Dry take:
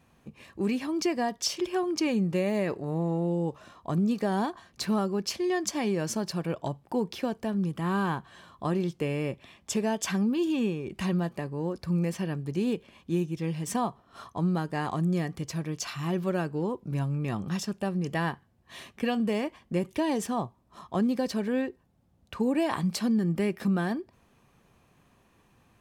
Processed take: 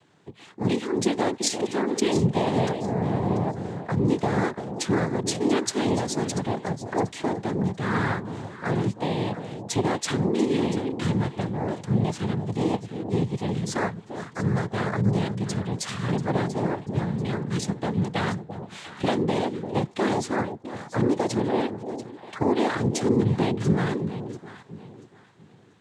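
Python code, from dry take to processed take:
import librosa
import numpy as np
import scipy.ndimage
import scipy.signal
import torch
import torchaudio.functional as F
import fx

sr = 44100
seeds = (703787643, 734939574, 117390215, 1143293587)

y = fx.noise_vocoder(x, sr, seeds[0], bands=6)
y = fx.echo_alternate(y, sr, ms=344, hz=830.0, feedback_pct=52, wet_db=-8)
y = F.gain(torch.from_numpy(y), 3.5).numpy()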